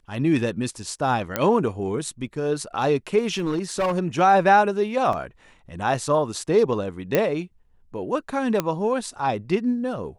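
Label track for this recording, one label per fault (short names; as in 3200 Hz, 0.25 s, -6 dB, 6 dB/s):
1.360000	1.360000	pop -7 dBFS
3.280000	3.980000	clipped -19 dBFS
5.130000	5.130000	gap 2.7 ms
7.150000	7.150000	pop -6 dBFS
8.600000	8.600000	pop -8 dBFS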